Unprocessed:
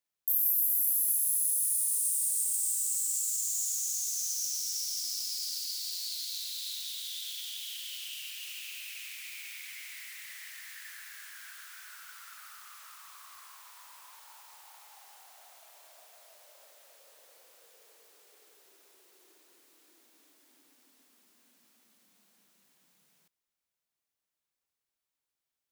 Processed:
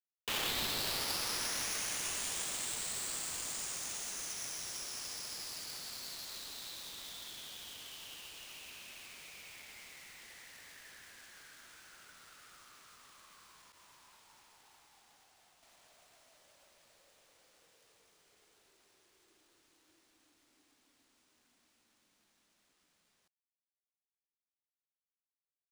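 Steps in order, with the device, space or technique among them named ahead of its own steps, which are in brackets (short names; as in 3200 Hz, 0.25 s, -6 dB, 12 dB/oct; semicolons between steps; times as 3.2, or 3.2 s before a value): HPF 150 Hz 24 dB/oct; 13.72–15.63 expander -51 dBFS; bell 310 Hz +7 dB 0.28 oct; early companding sampler (sample-rate reducer 16000 Hz, jitter 0%; companded quantiser 6-bit); gain -8.5 dB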